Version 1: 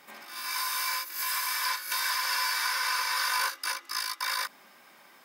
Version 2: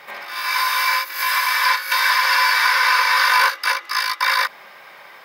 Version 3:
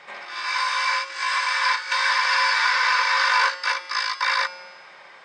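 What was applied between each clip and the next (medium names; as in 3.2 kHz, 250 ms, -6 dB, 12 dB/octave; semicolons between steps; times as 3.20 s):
ten-band graphic EQ 125 Hz +8 dB, 250 Hz -9 dB, 500 Hz +9 dB, 1 kHz +5 dB, 2 kHz +8 dB, 4 kHz +5 dB, 8 kHz -6 dB; trim +6 dB
brick-wall FIR low-pass 8.9 kHz; feedback comb 180 Hz, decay 1.5 s, mix 70%; trim +6 dB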